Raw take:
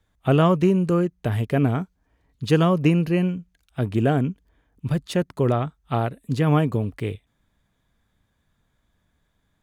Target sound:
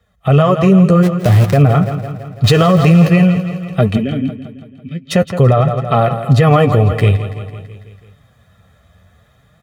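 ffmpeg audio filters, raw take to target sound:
ffmpeg -i in.wav -filter_complex "[0:a]asettb=1/sr,asplit=3[link_01][link_02][link_03];[link_01]atrim=end=2.444[link_04];[link_02]atrim=start=2.44:end=3.07,asetpts=PTS-STARTPTS,afade=type=in:duration=0.004:curve=qsin,afade=type=out:start_time=0.626:duration=0.004:curve=qsin,aeval=exprs='val(0)+0.5*0.0447*sgn(val(0))':channel_layout=same[link_05];[link_03]atrim=start=3.066[link_06];[link_04][link_05]acrossfade=duration=0.004:curve1=hsin:curve2=qsin[link_07];[link_07][link_06]acrossfade=duration=0.004:curve1=qsin:curve2=hsin,asplit=2[link_08][link_09];[link_09]adynamicsmooth=sensitivity=5.5:basefreq=4700,volume=-3dB[link_10];[link_08][link_10]amix=inputs=2:normalize=0,aecho=1:1:1.6:0.69,asplit=3[link_11][link_12][link_13];[link_11]afade=type=out:start_time=1.02:duration=0.02[link_14];[link_12]aeval=exprs='val(0)*gte(abs(val(0)),0.0891)':channel_layout=same,afade=type=in:start_time=1.02:duration=0.02,afade=type=out:start_time=1.56:duration=0.02[link_15];[link_13]afade=type=in:start_time=1.56:duration=0.02[link_16];[link_14][link_15][link_16]amix=inputs=3:normalize=0,asplit=3[link_17][link_18][link_19];[link_17]afade=type=out:start_time=3.96:duration=0.02[link_20];[link_18]asplit=3[link_21][link_22][link_23];[link_21]bandpass=frequency=270:width_type=q:width=8,volume=0dB[link_24];[link_22]bandpass=frequency=2290:width_type=q:width=8,volume=-6dB[link_25];[link_23]bandpass=frequency=3010:width_type=q:width=8,volume=-9dB[link_26];[link_24][link_25][link_26]amix=inputs=3:normalize=0,afade=type=in:start_time=3.96:duration=0.02,afade=type=out:start_time=5.1:duration=0.02[link_27];[link_19]afade=type=in:start_time=5.1:duration=0.02[link_28];[link_20][link_27][link_28]amix=inputs=3:normalize=0,flanger=delay=4.1:depth=8.2:regen=28:speed=0.51:shape=triangular,highpass=frequency=55:width=0.5412,highpass=frequency=55:width=1.3066,aecho=1:1:166|332|498|664|830|996:0.2|0.118|0.0695|0.041|0.0242|0.0143,dynaudnorm=framelen=110:gausssize=17:maxgain=9dB,alimiter=level_in=9.5dB:limit=-1dB:release=50:level=0:latency=1,volume=-1dB" out.wav

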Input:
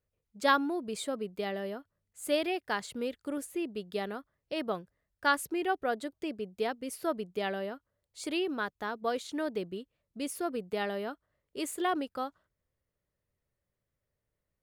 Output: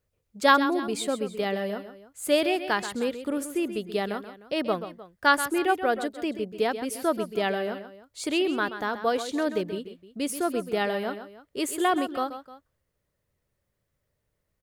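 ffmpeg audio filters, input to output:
ffmpeg -i in.wav -af "aecho=1:1:131|305:0.282|0.119,volume=6.5dB" out.wav

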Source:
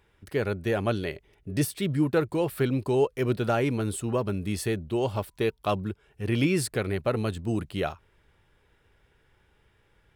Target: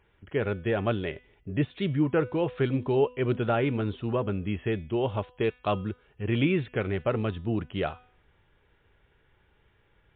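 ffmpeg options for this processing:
ffmpeg -i in.wav -af "bandreject=frequency=249.1:width_type=h:width=4,bandreject=frequency=498.2:width_type=h:width=4,bandreject=frequency=747.3:width_type=h:width=4,bandreject=frequency=996.4:width_type=h:width=4,bandreject=frequency=1245.5:width_type=h:width=4,bandreject=frequency=1494.6:width_type=h:width=4,bandreject=frequency=1743.7:width_type=h:width=4,bandreject=frequency=1992.8:width_type=h:width=4,bandreject=frequency=2241.9:width_type=h:width=4,bandreject=frequency=2491:width_type=h:width=4,bandreject=frequency=2740.1:width_type=h:width=4,bandreject=frequency=2989.2:width_type=h:width=4,bandreject=frequency=3238.3:width_type=h:width=4,bandreject=frequency=3487.4:width_type=h:width=4,bandreject=frequency=3736.5:width_type=h:width=4,bandreject=frequency=3985.6:width_type=h:width=4,bandreject=frequency=4234.7:width_type=h:width=4,bandreject=frequency=4483.8:width_type=h:width=4,bandreject=frequency=4732.9:width_type=h:width=4,bandreject=frequency=4982:width_type=h:width=4,bandreject=frequency=5231.1:width_type=h:width=4,bandreject=frequency=5480.2:width_type=h:width=4,bandreject=frequency=5729.3:width_type=h:width=4,bandreject=frequency=5978.4:width_type=h:width=4,bandreject=frequency=6227.5:width_type=h:width=4,bandreject=frequency=6476.6:width_type=h:width=4,bandreject=frequency=6725.7:width_type=h:width=4,bandreject=frequency=6974.8:width_type=h:width=4" -ar 8000 -c:a libmp3lame -b:a 48k out.mp3

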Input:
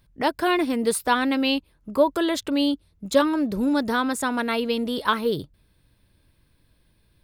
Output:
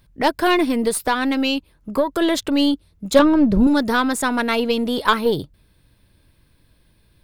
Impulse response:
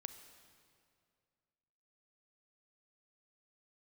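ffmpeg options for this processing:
-filter_complex "[0:a]asettb=1/sr,asplit=3[link_01][link_02][link_03];[link_01]atrim=end=0.794[link_04];[link_02]atrim=start=0.79:end=2.22,asetpts=PTS-STARTPTS,afade=type=in:duration=0.004:curve=qsin,afade=type=out:start_time=1.426:duration=0.004:curve=qsin,acompressor=threshold=-20dB:ratio=10[link_05];[link_03]atrim=start=2.216[link_06];[link_04][link_05]acrossfade=duration=0.004:curve1=hsin:curve2=qsin[link_07];[link_07][link_06]acrossfade=duration=0.004:curve1=qsin:curve2=hsin,asettb=1/sr,asplit=3[link_08][link_09][link_10];[link_08]atrim=end=3.194[link_11];[link_09]atrim=start=3.19:end=3.67,asetpts=PTS-STARTPTS,afade=type=in:duration=0.004:curve=qsin,afade=type=out:start_time=0.476:duration=0.004:curve=qsin,aemphasis=mode=reproduction:type=bsi[link_12];[link_10]atrim=start=3.666[link_13];[link_11][link_12]acrossfade=duration=0.004:curve1=hsin:curve2=qsin[link_14];[link_14][link_13]acrossfade=duration=0.004:curve1=qsin:curve2=hsin,aeval=exprs='0.501*(cos(1*acos(clip(val(0)/0.501,-1,1)))-cos(1*PI/2))+0.0251*(cos(6*acos(clip(val(0)/0.501,-1,1)))-cos(6*PI/2))':channel_layout=same,volume=5dB"

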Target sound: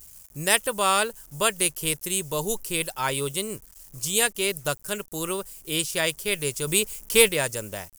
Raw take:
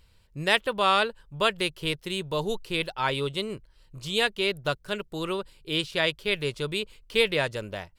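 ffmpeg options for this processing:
ffmpeg -i in.wav -filter_complex "[0:a]acrusher=bits=9:mix=0:aa=0.000001,aexciter=amount=10.5:drive=3.1:freq=5700,asettb=1/sr,asplit=3[link_01][link_02][link_03];[link_01]atrim=end=6.674[link_04];[link_02]atrim=start=6.67:end=7.29,asetpts=PTS-STARTPTS,afade=type=in:duration=0.004:curve=qsin,afade=type=out:start_time=0.616:duration=0.004:curve=qsin,acontrast=31[link_05];[link_03]atrim=start=7.286[link_06];[link_04][link_05]acrossfade=duration=0.004:curve1=hsin:curve2=qsin[link_07];[link_07][link_06]acrossfade=duration=0.004:curve1=qsin:curve2=hsin" out.wav

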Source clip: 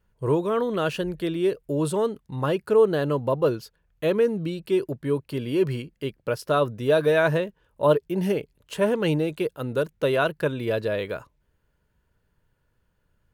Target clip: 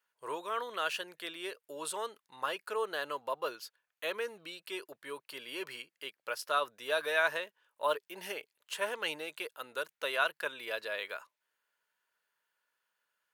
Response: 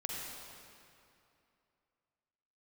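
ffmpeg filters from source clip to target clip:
-af "highpass=1100,volume=-2dB"

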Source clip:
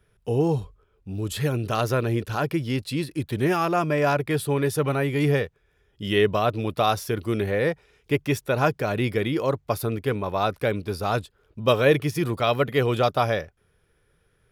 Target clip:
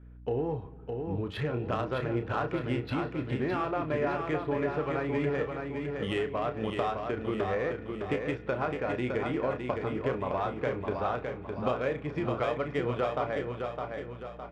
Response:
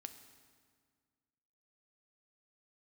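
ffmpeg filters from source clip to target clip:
-filter_complex "[0:a]lowpass=3800,lowshelf=frequency=260:gain=-9.5,acompressor=threshold=-32dB:ratio=6,aeval=exprs='val(0)+0.00224*(sin(2*PI*60*n/s)+sin(2*PI*2*60*n/s)/2+sin(2*PI*3*60*n/s)/3+sin(2*PI*4*60*n/s)/4+sin(2*PI*5*60*n/s)/5)':channel_layout=same,adynamicsmooth=sensitivity=3.5:basefreq=2100,asplit=2[link_01][link_02];[link_02]adelay=32,volume=-8.5dB[link_03];[link_01][link_03]amix=inputs=2:normalize=0,aecho=1:1:611|1222|1833|2444|3055|3666:0.562|0.259|0.119|0.0547|0.0252|0.0116,asplit=2[link_04][link_05];[1:a]atrim=start_sample=2205,lowpass=3100[link_06];[link_05][link_06]afir=irnorm=-1:irlink=0,volume=-0.5dB[link_07];[link_04][link_07]amix=inputs=2:normalize=0"

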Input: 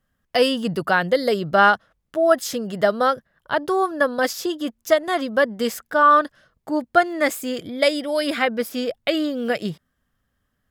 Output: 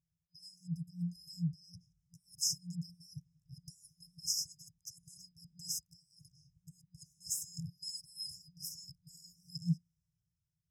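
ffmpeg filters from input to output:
ffmpeg -i in.wav -filter_complex "[0:a]areverse,acompressor=threshold=-23dB:ratio=8,areverse,asplit=3[link_01][link_02][link_03];[link_01]bandpass=frequency=270:width_type=q:width=8,volume=0dB[link_04];[link_02]bandpass=frequency=2290:width_type=q:width=8,volume=-6dB[link_05];[link_03]bandpass=frequency=3010:width_type=q:width=8,volume=-9dB[link_06];[link_04][link_05][link_06]amix=inputs=3:normalize=0,dynaudnorm=framelen=140:gausssize=17:maxgain=12dB,afftfilt=real='re*(1-between(b*sr/4096,180,5000))':imag='im*(1-between(b*sr/4096,180,5000))':win_size=4096:overlap=0.75,volume=13dB" out.wav

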